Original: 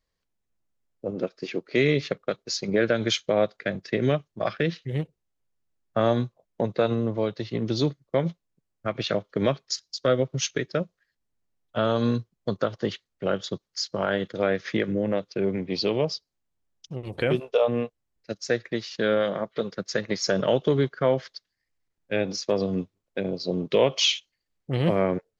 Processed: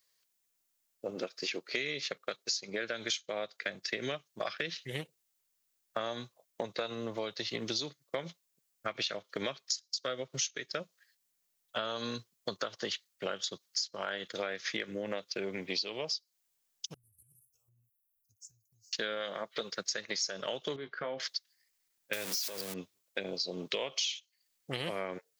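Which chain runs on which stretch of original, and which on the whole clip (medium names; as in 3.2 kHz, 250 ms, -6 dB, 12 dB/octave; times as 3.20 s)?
16.94–18.93 s: inverse Chebyshev band-stop 270–3800 Hz, stop band 60 dB + compression 10:1, threshold -55 dBFS
20.76–21.20 s: compression 2.5:1, threshold -31 dBFS + distance through air 320 m + doubling 19 ms -9 dB
22.13–22.74 s: jump at every zero crossing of -26.5 dBFS + compression 3:1, threshold -24 dBFS
whole clip: tilt EQ +4.5 dB/octave; compression 8:1, threshold -32 dBFS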